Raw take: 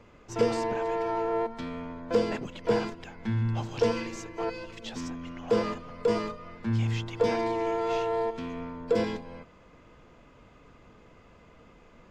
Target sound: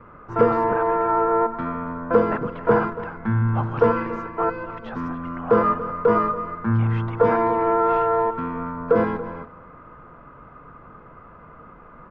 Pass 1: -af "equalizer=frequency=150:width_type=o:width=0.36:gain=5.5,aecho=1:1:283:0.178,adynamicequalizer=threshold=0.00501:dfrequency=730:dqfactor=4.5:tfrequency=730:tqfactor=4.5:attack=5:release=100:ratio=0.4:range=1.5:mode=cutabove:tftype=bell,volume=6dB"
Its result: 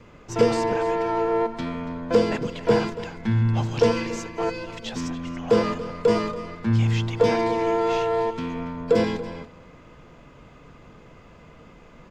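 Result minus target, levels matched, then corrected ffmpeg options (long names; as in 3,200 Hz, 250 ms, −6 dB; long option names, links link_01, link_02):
1,000 Hz band −4.5 dB
-af "lowpass=frequency=1300:width_type=q:width=4,equalizer=frequency=150:width_type=o:width=0.36:gain=5.5,aecho=1:1:283:0.178,adynamicequalizer=threshold=0.00501:dfrequency=730:dqfactor=4.5:tfrequency=730:tqfactor=4.5:attack=5:release=100:ratio=0.4:range=1.5:mode=cutabove:tftype=bell,volume=6dB"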